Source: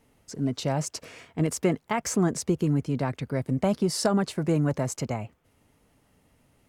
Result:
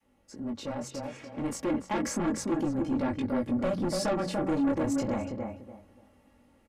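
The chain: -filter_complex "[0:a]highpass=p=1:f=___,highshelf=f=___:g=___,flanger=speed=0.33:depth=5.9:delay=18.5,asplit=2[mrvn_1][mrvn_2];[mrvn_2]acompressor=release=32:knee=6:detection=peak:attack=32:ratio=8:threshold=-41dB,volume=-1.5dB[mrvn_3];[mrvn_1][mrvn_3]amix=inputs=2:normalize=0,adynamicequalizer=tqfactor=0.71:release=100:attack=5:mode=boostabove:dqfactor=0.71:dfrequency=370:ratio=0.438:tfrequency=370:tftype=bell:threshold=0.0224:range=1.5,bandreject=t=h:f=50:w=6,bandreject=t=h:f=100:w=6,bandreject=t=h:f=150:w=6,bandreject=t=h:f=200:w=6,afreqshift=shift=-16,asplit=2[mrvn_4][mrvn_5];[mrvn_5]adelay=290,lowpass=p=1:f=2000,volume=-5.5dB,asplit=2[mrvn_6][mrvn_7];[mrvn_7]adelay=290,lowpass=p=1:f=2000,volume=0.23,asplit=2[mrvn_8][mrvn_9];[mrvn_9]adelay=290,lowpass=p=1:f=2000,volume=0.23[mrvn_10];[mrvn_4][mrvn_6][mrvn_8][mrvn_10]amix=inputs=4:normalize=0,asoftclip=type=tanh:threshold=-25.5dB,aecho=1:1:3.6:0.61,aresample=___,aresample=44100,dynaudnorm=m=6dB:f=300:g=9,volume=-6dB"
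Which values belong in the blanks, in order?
61, 2900, -9, 32000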